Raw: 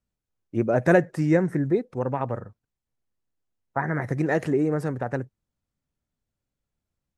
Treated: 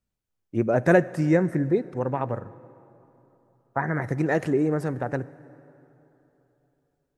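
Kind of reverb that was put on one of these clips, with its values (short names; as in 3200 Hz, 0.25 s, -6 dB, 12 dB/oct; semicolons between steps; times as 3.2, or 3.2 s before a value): plate-style reverb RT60 3.4 s, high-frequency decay 0.65×, DRR 18 dB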